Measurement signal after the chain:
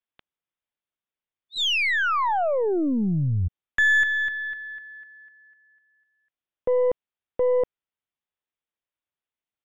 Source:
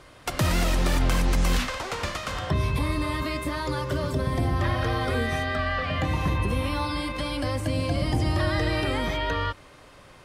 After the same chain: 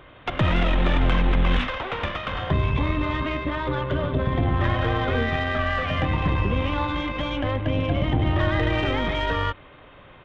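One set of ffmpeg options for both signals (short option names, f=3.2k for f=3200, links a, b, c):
-af "aresample=8000,aresample=44100,aeval=exprs='0.188*(cos(1*acos(clip(val(0)/0.188,-1,1)))-cos(1*PI/2))+0.0133*(cos(4*acos(clip(val(0)/0.188,-1,1)))-cos(4*PI/2))+0.00211*(cos(8*acos(clip(val(0)/0.188,-1,1)))-cos(8*PI/2))':c=same,volume=2.5dB"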